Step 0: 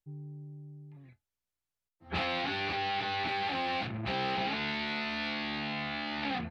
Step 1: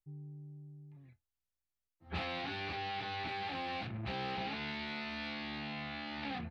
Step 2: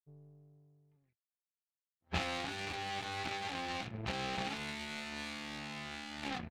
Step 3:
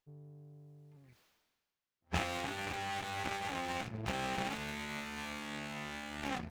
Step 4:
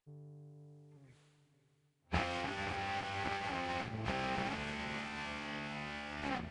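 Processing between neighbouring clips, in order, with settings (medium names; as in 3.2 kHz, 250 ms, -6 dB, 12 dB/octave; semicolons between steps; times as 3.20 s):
bass shelf 100 Hz +9.5 dB; trim -7 dB
power-law waveshaper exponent 2; trim +9 dB
reverse; upward compressor, threshold -48 dBFS; reverse; sliding maximum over 5 samples; trim +1 dB
knee-point frequency compression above 2.2 kHz 1.5:1; echo that smears into a reverb 537 ms, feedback 41%, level -12 dB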